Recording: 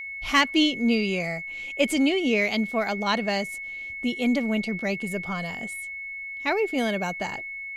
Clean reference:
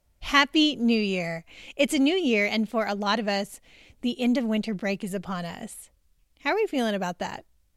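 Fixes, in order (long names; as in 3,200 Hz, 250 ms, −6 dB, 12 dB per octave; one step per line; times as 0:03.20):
clipped peaks rebuilt −9.5 dBFS
notch filter 2,200 Hz, Q 30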